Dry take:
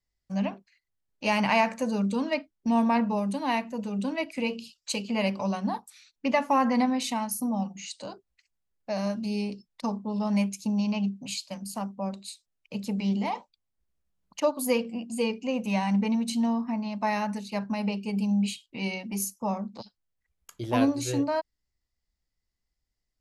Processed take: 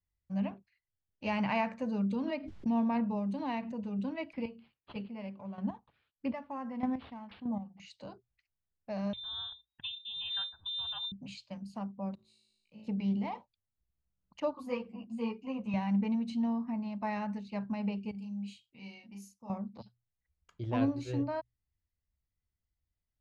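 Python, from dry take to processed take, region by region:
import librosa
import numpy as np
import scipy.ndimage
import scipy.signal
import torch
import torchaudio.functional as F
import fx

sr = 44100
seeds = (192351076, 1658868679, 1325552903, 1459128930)

y = fx.chain(x, sr, fx.dynamic_eq(hz=1600.0, q=0.89, threshold_db=-42.0, ratio=4.0, max_db=-3),
    fx.pre_swell(db_per_s=53.0), at=(2.08, 3.76))
y = fx.chain(y, sr, fx.chopper(hz=1.6, depth_pct=65, duty_pct=20),
    fx.resample_linear(factor=6), at=(4.33, 7.8))
y = fx.chain(y, sr, fx.freq_invert(carrier_hz=3800),
    fx.comb(ms=1.2, depth=0.47), at=(9.13, 11.12))
y = fx.chain(y, sr, fx.high_shelf(hz=6500.0, db=9.0),
    fx.comb_fb(f0_hz=54.0, decay_s=0.83, harmonics='all', damping=0.0, mix_pct=100),
    fx.sustainer(db_per_s=48.0), at=(12.15, 12.87))
y = fx.chain(y, sr, fx.peak_eq(hz=1100.0, db=10.0, octaves=0.6),
    fx.ensemble(), at=(14.53, 15.74))
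y = fx.chain(y, sr, fx.pre_emphasis(coefficient=0.8),
    fx.doubler(ms=35.0, db=-3.0), at=(18.11, 19.5))
y = scipy.signal.sosfilt(scipy.signal.butter(2, 3300.0, 'lowpass', fs=sr, output='sos'), y)
y = fx.peak_eq(y, sr, hz=85.0, db=13.0, octaves=1.8)
y = fx.hum_notches(y, sr, base_hz=60, count=2)
y = F.gain(torch.from_numpy(y), -9.0).numpy()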